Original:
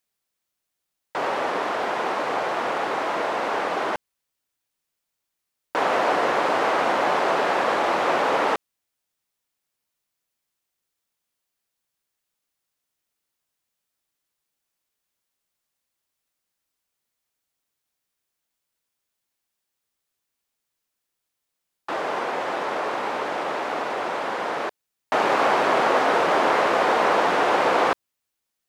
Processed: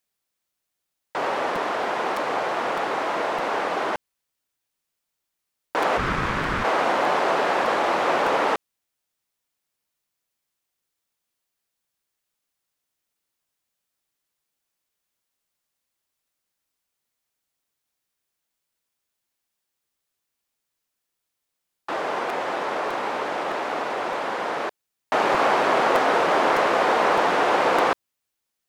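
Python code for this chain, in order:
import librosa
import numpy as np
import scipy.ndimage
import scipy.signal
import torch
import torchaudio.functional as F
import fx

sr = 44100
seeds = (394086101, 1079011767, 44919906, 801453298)

y = fx.ring_mod(x, sr, carrier_hz=570.0, at=(5.97, 6.63), fade=0.02)
y = fx.buffer_crackle(y, sr, first_s=0.33, period_s=0.61, block=256, kind='repeat')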